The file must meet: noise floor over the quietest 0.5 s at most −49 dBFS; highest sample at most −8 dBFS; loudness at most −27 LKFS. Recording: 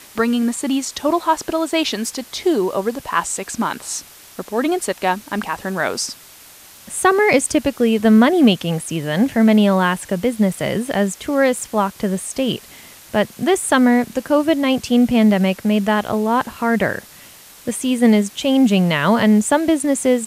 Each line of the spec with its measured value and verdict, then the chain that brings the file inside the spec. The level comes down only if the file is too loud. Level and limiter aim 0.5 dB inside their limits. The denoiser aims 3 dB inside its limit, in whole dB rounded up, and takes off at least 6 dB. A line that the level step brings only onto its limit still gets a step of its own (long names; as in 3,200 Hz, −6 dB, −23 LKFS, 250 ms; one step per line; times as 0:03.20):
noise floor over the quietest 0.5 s −43 dBFS: out of spec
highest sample −1.5 dBFS: out of spec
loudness −18.0 LKFS: out of spec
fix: level −9.5 dB